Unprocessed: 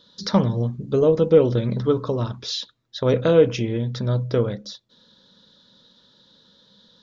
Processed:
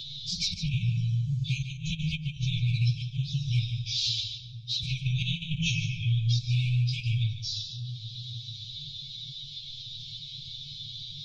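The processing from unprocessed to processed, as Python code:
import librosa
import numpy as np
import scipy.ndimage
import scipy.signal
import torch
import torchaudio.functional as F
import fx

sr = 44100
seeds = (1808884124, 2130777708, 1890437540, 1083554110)

p1 = fx.rattle_buzz(x, sr, strikes_db=-19.0, level_db=-28.0)
p2 = fx.dynamic_eq(p1, sr, hz=270.0, q=4.9, threshold_db=-36.0, ratio=4.0, max_db=4)
p3 = fx.room_shoebox(p2, sr, seeds[0], volume_m3=840.0, walls='furnished', distance_m=1.5)
p4 = fx.env_flanger(p3, sr, rest_ms=8.9, full_db=-13.0)
p5 = fx.stretch_vocoder_free(p4, sr, factor=1.6)
p6 = scipy.signal.sosfilt(scipy.signal.butter(2, 6200.0, 'lowpass', fs=sr, output='sos'), p5)
p7 = fx.over_compress(p6, sr, threshold_db=-22.0, ratio=-0.5)
p8 = fx.brickwall_bandstop(p7, sr, low_hz=160.0, high_hz=2200.0)
p9 = fx.high_shelf(p8, sr, hz=4700.0, db=9.0)
p10 = p9 + fx.echo_single(p9, sr, ms=147, db=-11.5, dry=0)
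p11 = fx.band_squash(p10, sr, depth_pct=70)
y = p11 * librosa.db_to_amplitude(3.0)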